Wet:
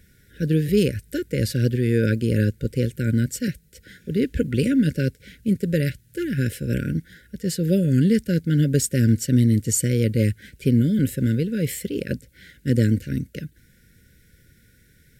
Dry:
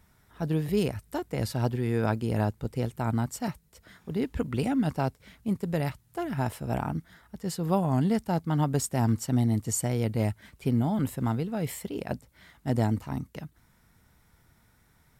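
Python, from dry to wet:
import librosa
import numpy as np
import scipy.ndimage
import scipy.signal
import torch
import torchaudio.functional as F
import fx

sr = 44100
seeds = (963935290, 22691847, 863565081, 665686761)

y = fx.brickwall_bandstop(x, sr, low_hz=580.0, high_hz=1400.0)
y = y * 10.0 ** (7.5 / 20.0)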